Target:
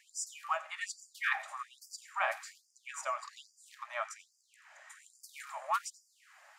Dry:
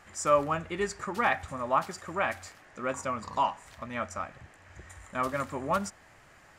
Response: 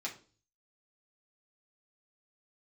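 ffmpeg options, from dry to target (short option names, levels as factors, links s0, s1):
-filter_complex "[0:a]asplit=2[s0][s1];[1:a]atrim=start_sample=2205,highshelf=f=8600:g=7.5,adelay=84[s2];[s1][s2]afir=irnorm=-1:irlink=0,volume=0.119[s3];[s0][s3]amix=inputs=2:normalize=0,afftfilt=real='re*gte(b*sr/1024,520*pow(4700/520,0.5+0.5*sin(2*PI*1.2*pts/sr)))':imag='im*gte(b*sr/1024,520*pow(4700/520,0.5+0.5*sin(2*PI*1.2*pts/sr)))':win_size=1024:overlap=0.75,volume=0.794"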